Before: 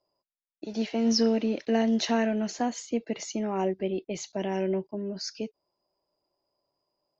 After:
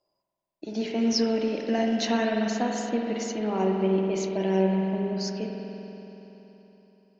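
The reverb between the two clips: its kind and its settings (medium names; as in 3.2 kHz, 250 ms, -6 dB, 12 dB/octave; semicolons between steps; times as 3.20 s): spring tank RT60 3.6 s, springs 47 ms, chirp 80 ms, DRR 0 dB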